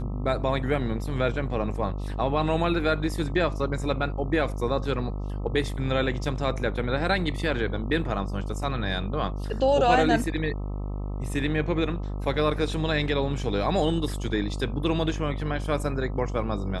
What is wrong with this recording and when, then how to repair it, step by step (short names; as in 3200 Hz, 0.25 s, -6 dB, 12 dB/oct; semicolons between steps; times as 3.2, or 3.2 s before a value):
buzz 50 Hz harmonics 26 -31 dBFS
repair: de-hum 50 Hz, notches 26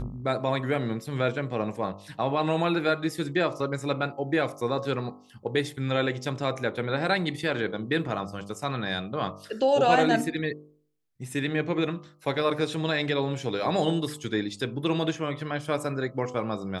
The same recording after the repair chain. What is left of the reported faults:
none